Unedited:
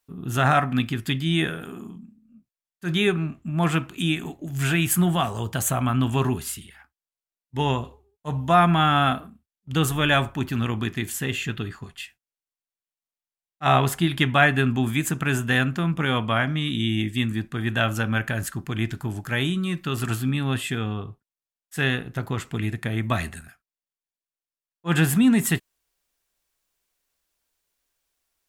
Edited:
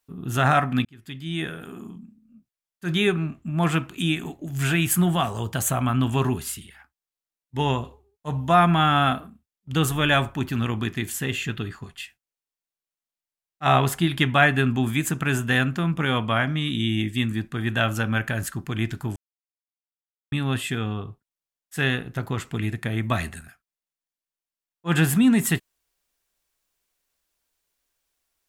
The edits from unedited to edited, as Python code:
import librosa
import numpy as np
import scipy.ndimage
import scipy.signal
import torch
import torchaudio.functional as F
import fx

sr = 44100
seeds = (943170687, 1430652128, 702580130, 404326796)

y = fx.edit(x, sr, fx.fade_in_span(start_s=0.85, length_s=1.06),
    fx.silence(start_s=19.16, length_s=1.16), tone=tone)